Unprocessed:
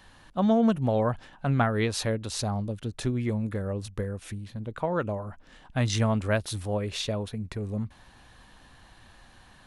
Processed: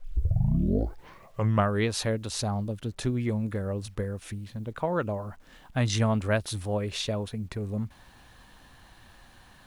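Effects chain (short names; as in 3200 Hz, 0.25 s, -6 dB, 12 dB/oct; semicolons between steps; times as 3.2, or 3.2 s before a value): tape start at the beginning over 1.84 s; bit-crush 11-bit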